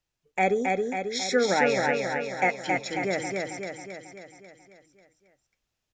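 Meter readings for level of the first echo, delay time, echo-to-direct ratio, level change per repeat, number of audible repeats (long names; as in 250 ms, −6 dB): −3.0 dB, 271 ms, −1.0 dB, −4.5 dB, 7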